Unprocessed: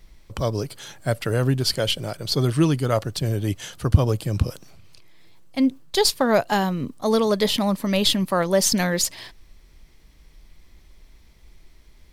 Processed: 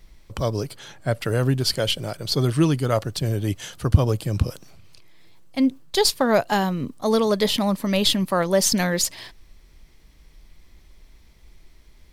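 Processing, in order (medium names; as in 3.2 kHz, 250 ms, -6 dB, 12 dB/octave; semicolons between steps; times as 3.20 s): 0.75–1.19 s: treble shelf 6.3 kHz -10.5 dB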